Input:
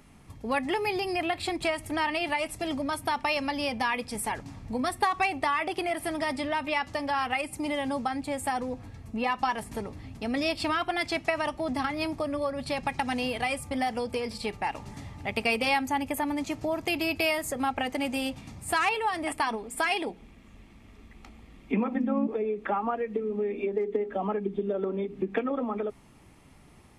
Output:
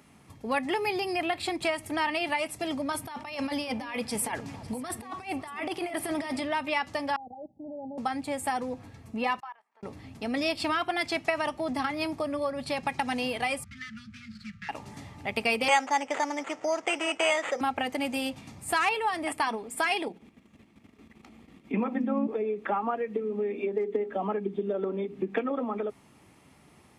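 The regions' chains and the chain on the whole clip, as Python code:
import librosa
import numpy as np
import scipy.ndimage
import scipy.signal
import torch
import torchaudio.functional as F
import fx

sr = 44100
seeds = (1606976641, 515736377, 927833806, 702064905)

y = fx.chain(x, sr, fx.over_compress(threshold_db=-32.0, ratio=-0.5),
    fx.echo_alternate(ms=277, hz=1000.0, feedback_pct=60, wet_db=-13.5), at=(2.92, 6.42))
y = fx.chain(y, sr, fx.level_steps(step_db=18),
    fx.cheby_ripple(hz=840.0, ripple_db=6),
    fx.band_widen(depth_pct=40), at=(7.16, 7.98))
y = fx.chain(y, sr, fx.ladder_bandpass(hz=1300.0, resonance_pct=30),
    fx.level_steps(step_db=20), at=(9.4, 9.83))
y = fx.chain(y, sr, fx.median_filter(points=15),
    fx.cheby1_bandstop(low_hz=220.0, high_hz=1300.0, order=5),
    fx.air_absorb(metres=88.0), at=(13.64, 14.69))
y = fx.chain(y, sr, fx.resample_bad(factor=8, down='none', up='hold'),
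    fx.cabinet(low_hz=380.0, low_slope=12, high_hz=7600.0, hz=(520.0, 780.0, 1300.0, 2000.0, 4100.0, 7000.0), db=(6, 4, 4, 6, -10, 4)), at=(15.68, 17.61))
y = fx.chain(y, sr, fx.highpass(hz=46.0, slope=12),
    fx.peak_eq(hz=240.0, db=5.0, octaves=1.7),
    fx.level_steps(step_db=10), at=(20.08, 21.74))
y = scipy.signal.sosfilt(scipy.signal.butter(2, 74.0, 'highpass', fs=sr, output='sos'), y)
y = fx.low_shelf(y, sr, hz=110.0, db=-6.5)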